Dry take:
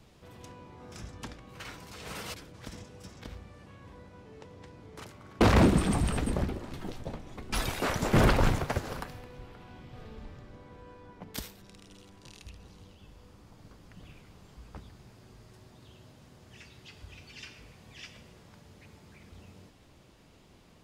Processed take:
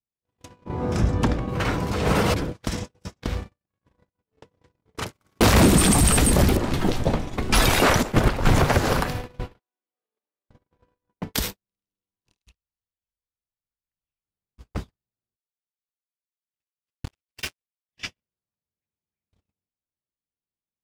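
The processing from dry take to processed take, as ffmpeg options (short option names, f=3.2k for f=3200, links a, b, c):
-filter_complex "[0:a]asettb=1/sr,asplit=3[a][b][c];[a]atrim=end=0.654[d];[b]atrim=start=0.65:end=2.52,asetpts=PTS-STARTPTS,afade=t=in:d=0.004:c=qsin,afade=t=out:st=1.866:d=0.004:c=qsin,tiltshelf=f=1.5k:g=7[e];[c]atrim=start=2.516[f];[d][e]acrossfade=d=0.004:c1=hsin:c2=qsin[g];[g][f]acrossfade=d=0.004:c1=qsin:c2=hsin,asettb=1/sr,asplit=3[h][i][j];[h]atrim=end=5.134[k];[i]atrim=start=5.13:end=6.57,asetpts=PTS-STARTPTS,afade=t=in:d=0.004:c=qsin,afade=t=out:st=1.436:d=0.004:c=qsin,aemphasis=mode=production:type=75kf[l];[j]atrim=start=6.566[m];[k][l]acrossfade=d=0.004:c1=hsin:c2=qsin[n];[n][m]acrossfade=d=0.004:c1=qsin:c2=hsin,asplit=3[o][p][q];[o]afade=t=out:st=8.01:d=0.02[r];[p]agate=range=-19dB:threshold=-19dB:ratio=16:release=100:detection=peak,afade=t=in:st=8.01:d=0.02,afade=t=out:st=8.45:d=0.02[s];[q]afade=t=in:st=8.45:d=0.02[t];[r][s][t]amix=inputs=3:normalize=0,asettb=1/sr,asplit=3[u][v][w];[u]atrim=end=9.594[x];[v]atrim=start=9.59:end=10.49,asetpts=PTS-STARTPTS,afade=t=in:d=0.004:c=qsin,afade=t=out:st=0.896:d=0.004:c=qsin,highpass=f=320:w=0.5412,highpass=f=320:w=1.3066[y];[w]atrim=start=10.486[z];[x][y]acrossfade=d=0.004:c1=hsin:c2=qsin[aa];[aa][z]acrossfade=d=0.004:c1=qsin:c2=hsin,asettb=1/sr,asplit=3[ab][ac][ad];[ab]atrim=end=12.374[ae];[ac]atrim=start=12.37:end=14.25,asetpts=PTS-STARTPTS,afade=t=in:d=0.004:c=qsin,afade=t=out:st=1.876:d=0.004:c=qsin,equalizer=f=230:t=o:w=3:g=-10.5[af];[ad]atrim=start=14.246[ag];[ae][af]acrossfade=d=0.004:c1=hsin:c2=qsin[ah];[ah][ag]acrossfade=d=0.004:c1=qsin:c2=hsin,asettb=1/sr,asplit=3[ai][aj][ak];[ai]atrim=end=15.354[al];[aj]atrim=start=15.35:end=17.93,asetpts=PTS-STARTPTS,afade=t=in:d=0.004:c=qsin,afade=t=out:st=2.576:d=0.004:c=qsin,acrusher=bits=6:mix=0:aa=0.5[am];[ak]atrim=start=17.926[an];[al][am]acrossfade=d=0.004:c1=hsin:c2=qsin[ao];[ao][an]acrossfade=d=0.004:c1=qsin:c2=hsin,agate=range=-60dB:threshold=-44dB:ratio=16:detection=peak,alimiter=level_in=24.5dB:limit=-1dB:release=50:level=0:latency=1,volume=-7.5dB"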